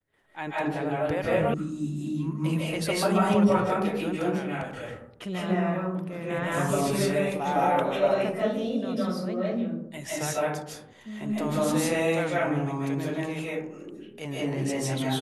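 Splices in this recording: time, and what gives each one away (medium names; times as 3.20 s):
1.54 s: sound stops dead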